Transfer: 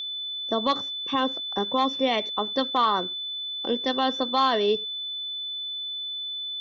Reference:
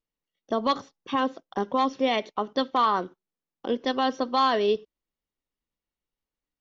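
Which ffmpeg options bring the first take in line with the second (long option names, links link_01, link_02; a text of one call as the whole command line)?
ffmpeg -i in.wav -af "bandreject=frequency=3500:width=30" out.wav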